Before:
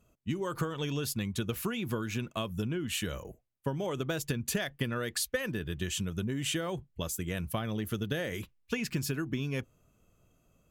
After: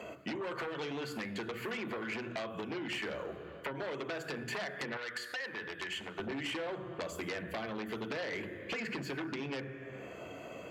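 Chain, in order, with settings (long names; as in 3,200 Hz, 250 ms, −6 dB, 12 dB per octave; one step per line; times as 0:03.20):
high shelf with overshoot 2,300 Hz −8 dB, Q 1.5
convolution reverb RT60 0.85 s, pre-delay 3 ms, DRR 10 dB
downward compressor 2.5 to 1, threshold −47 dBFS, peak gain reduction 20.5 dB
sine wavefolder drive 13 dB, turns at −24.5 dBFS
high-pass filter 340 Hz 6 dB per octave, from 0:04.97 1,500 Hz, from 0:06.19 240 Hz
multiband upward and downward compressor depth 70%
level −8 dB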